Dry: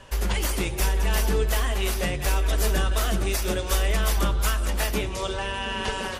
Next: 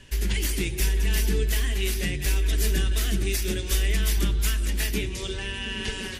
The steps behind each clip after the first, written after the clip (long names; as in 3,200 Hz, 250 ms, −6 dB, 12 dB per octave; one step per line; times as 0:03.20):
flat-topped bell 830 Hz −14 dB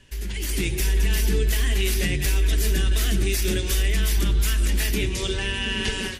brickwall limiter −19 dBFS, peak gain reduction 6.5 dB
automatic gain control gain up to 10 dB
level −4.5 dB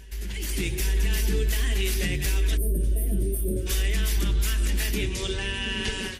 gain on a spectral selection 0:02.57–0:03.66, 700–8,400 Hz −29 dB
backwards echo 862 ms −22.5 dB
level −3 dB